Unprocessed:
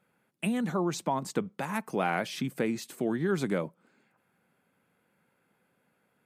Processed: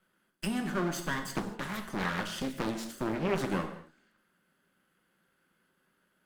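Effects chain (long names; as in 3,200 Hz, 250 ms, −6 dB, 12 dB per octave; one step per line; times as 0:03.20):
lower of the sound and its delayed copy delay 0.63 ms
parametric band 93 Hz −9 dB 1.6 octaves
notch filter 440 Hz, Q 12
reverb whose tail is shaped and stops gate 270 ms falling, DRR 4.5 dB
0:01.32–0:03.50: highs frequency-modulated by the lows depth 0.8 ms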